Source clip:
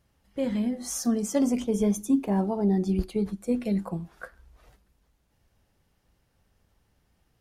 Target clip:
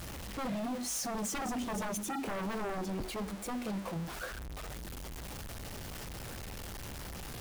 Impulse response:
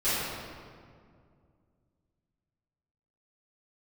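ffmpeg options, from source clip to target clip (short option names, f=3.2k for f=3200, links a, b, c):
-filter_complex "[0:a]aeval=exprs='val(0)+0.5*0.0282*sgn(val(0))':c=same,asettb=1/sr,asplit=3[a][b][c];[a]atrim=end=2.814[d];[b]atrim=start=2.81:end=3.96,asetpts=PTS-STARTPTS,afade=t=in:d=0.004:c=qsin,afade=t=out:st=1.146:d=0.004:c=qsin,equalizer=f=140:w=1.4:g=-9.5[e];[c]atrim=start=3.956[f];[d][e]acrossfade=d=0.004:c1=hsin:c2=qsin[g];[g][f]acrossfade=d=0.004:c1=qsin:c2=hsin,aeval=exprs='0.0531*(abs(mod(val(0)/0.0531+3,4)-2)-1)':c=same,volume=-6dB"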